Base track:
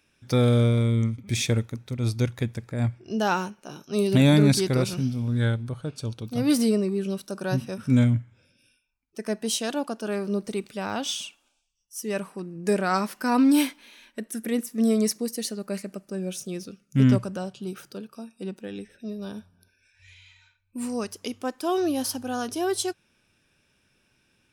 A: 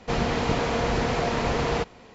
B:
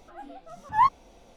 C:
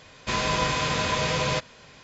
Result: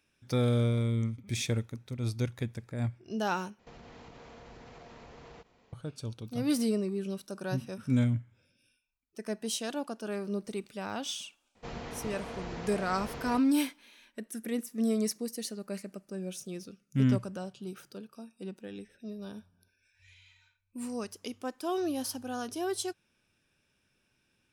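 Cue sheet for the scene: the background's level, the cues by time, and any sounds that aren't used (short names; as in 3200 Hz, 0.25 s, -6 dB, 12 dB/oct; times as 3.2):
base track -7 dB
3.59 replace with A -16.5 dB + compressor 12:1, threshold -30 dBFS
11.55 add A -16 dB
not used: B, C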